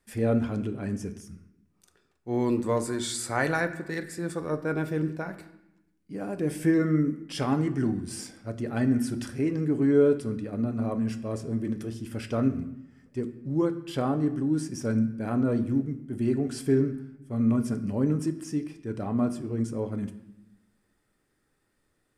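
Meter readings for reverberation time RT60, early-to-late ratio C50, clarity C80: 0.90 s, 12.5 dB, 14.5 dB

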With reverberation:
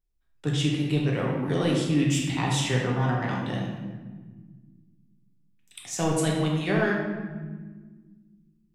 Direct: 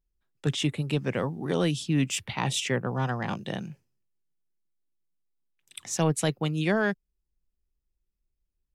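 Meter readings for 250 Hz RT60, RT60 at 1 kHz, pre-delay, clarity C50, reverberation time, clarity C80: 2.6 s, 1.2 s, 3 ms, 1.5 dB, 1.5 s, 4.0 dB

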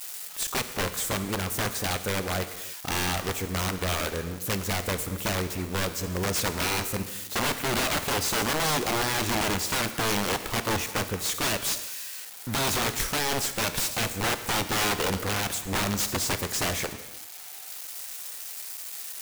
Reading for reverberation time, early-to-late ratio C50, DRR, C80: non-exponential decay, 11.0 dB, 9.5 dB, 12.5 dB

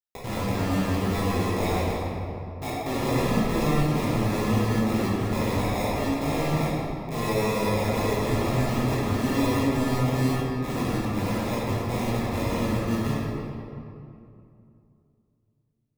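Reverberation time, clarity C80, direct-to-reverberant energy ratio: 2.6 s, −1.5 dB, −9.0 dB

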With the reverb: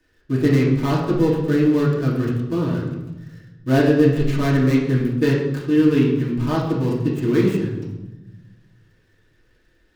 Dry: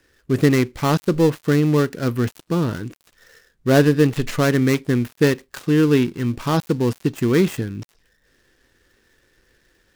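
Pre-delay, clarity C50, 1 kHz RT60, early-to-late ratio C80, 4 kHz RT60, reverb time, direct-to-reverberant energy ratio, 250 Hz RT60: 3 ms, 3.5 dB, 0.95 s, 6.0 dB, 0.70 s, 1.0 s, −6.5 dB, 1.6 s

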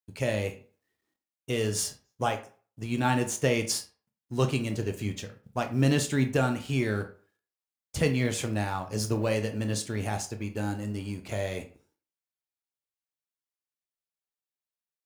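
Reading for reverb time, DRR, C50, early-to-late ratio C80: 0.45 s, 6.5 dB, 12.5 dB, 17.5 dB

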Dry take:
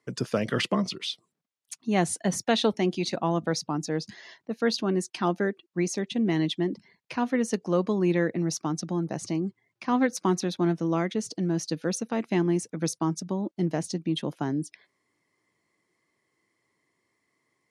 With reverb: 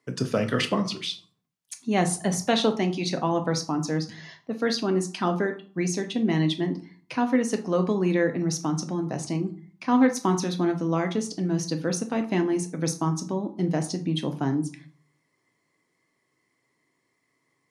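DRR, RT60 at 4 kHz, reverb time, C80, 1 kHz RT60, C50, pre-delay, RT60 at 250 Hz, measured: 6.0 dB, 0.30 s, 0.45 s, 17.5 dB, 0.45 s, 13.0 dB, 3 ms, 0.60 s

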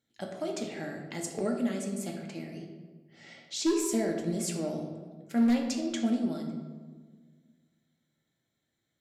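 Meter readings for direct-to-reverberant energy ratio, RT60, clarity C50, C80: 1.5 dB, 1.6 s, 5.0 dB, 7.0 dB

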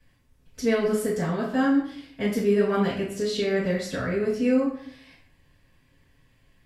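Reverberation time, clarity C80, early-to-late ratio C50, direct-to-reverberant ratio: 0.65 s, 8.5 dB, 4.5 dB, −11.0 dB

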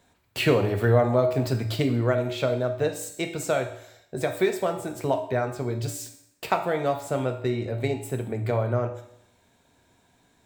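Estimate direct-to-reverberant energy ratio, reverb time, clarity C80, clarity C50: 5.0 dB, 0.70 s, 12.5 dB, 9.0 dB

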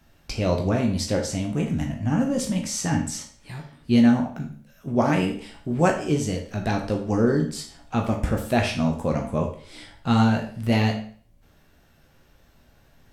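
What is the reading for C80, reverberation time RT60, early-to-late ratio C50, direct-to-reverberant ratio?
11.5 dB, 0.50 s, 7.5 dB, 1.0 dB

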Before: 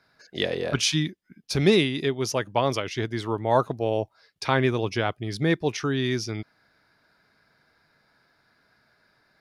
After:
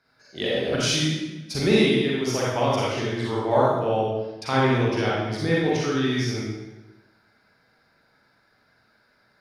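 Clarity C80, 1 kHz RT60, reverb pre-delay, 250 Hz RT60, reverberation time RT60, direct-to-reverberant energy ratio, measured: 1.5 dB, 1.1 s, 36 ms, 1.2 s, 1.1 s, −6.5 dB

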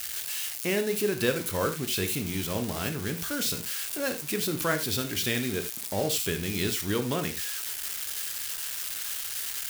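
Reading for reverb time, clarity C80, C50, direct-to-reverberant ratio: non-exponential decay, 17.0 dB, 11.0 dB, 6.5 dB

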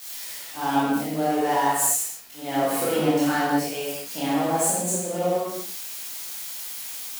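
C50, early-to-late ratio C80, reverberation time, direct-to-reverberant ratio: −3.5 dB, −0.5 dB, non-exponential decay, −10.0 dB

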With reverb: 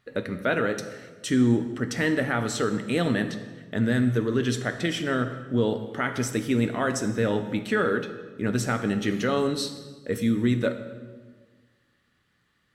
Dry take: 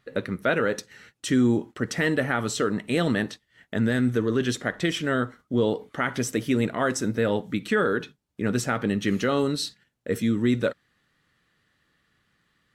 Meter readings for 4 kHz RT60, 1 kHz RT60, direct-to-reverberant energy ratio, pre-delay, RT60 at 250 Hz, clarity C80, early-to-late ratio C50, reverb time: 1.1 s, 1.3 s, 8.0 dB, 5 ms, 1.8 s, 11.5 dB, 10.5 dB, 1.4 s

